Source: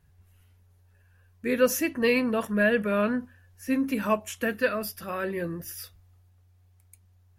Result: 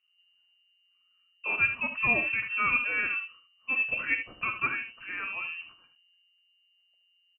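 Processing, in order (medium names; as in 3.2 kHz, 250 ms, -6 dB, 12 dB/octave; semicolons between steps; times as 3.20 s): level-controlled noise filter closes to 1.5 kHz, open at -23.5 dBFS; gate -50 dBFS, range -9 dB; feedback comb 96 Hz, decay 0.17 s, harmonics odd, mix 50%; on a send: early reflections 51 ms -16 dB, 76 ms -10 dB; on the sum: frequency inversion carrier 2.9 kHz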